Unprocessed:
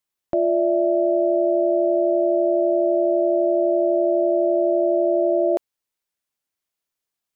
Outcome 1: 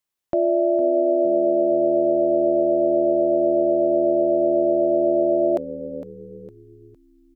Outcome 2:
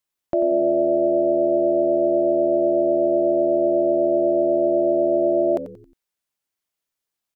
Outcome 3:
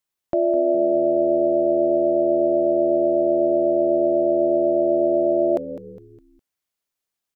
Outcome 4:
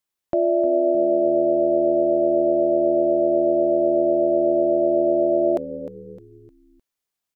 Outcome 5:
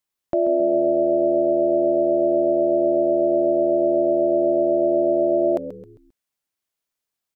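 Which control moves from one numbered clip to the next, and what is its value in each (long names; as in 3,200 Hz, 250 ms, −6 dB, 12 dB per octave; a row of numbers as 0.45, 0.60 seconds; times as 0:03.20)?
echo with shifted repeats, delay time: 458, 90, 205, 306, 133 milliseconds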